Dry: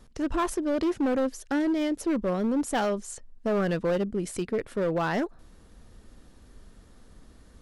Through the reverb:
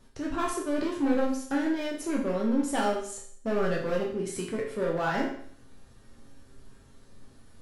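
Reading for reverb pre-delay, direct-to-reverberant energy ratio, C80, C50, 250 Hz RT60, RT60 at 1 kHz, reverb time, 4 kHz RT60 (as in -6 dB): 7 ms, -3.0 dB, 9.0 dB, 5.5 dB, 0.60 s, 0.55 s, 0.60 s, 0.60 s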